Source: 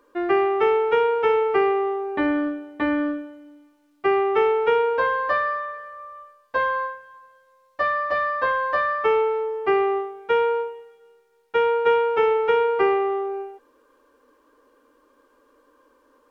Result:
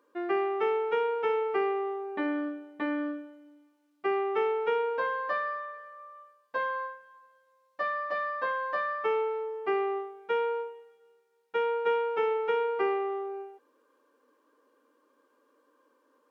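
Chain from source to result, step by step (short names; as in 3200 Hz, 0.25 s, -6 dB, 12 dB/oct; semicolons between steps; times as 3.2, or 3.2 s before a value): brick-wall FIR high-pass 160 Hz; gain -8.5 dB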